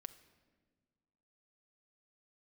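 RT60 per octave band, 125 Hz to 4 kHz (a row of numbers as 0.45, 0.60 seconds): 2.0, 2.0, 1.7, 1.4, 1.2, 1.0 seconds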